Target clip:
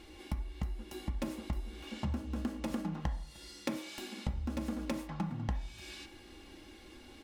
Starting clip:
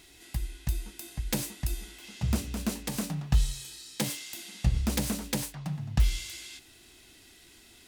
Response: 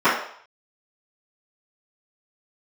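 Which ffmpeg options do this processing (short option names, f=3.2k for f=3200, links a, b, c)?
-filter_complex "[0:a]lowpass=f=1.1k:p=1,aecho=1:1:3.9:0.57,acompressor=threshold=-38dB:ratio=12,aecho=1:1:332:0.0668,asplit=2[a][b];[1:a]atrim=start_sample=2205[c];[b][c]afir=irnorm=-1:irlink=0,volume=-28.5dB[d];[a][d]amix=inputs=2:normalize=0,asetrate=48000,aresample=44100,volume=5.5dB"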